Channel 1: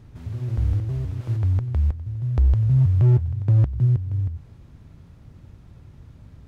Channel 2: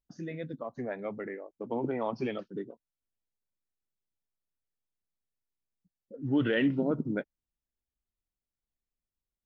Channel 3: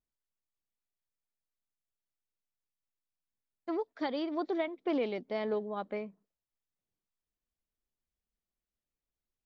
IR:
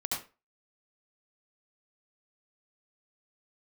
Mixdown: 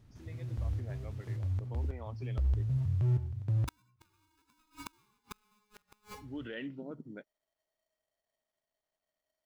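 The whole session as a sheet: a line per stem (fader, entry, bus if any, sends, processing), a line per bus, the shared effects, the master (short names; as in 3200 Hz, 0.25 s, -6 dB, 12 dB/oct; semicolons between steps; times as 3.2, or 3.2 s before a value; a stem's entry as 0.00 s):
-14.5 dB, 0.00 s, send -15.5 dB, dry
-15.0 dB, 0.00 s, no send, dry
-2.5 dB, 0.00 s, send -6 dB, median filter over 25 samples; LPF 4100 Hz 12 dB/oct; polarity switched at an audio rate 630 Hz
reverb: on, RT60 0.30 s, pre-delay 65 ms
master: high shelf 2600 Hz +6.5 dB; flipped gate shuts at -22 dBFS, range -42 dB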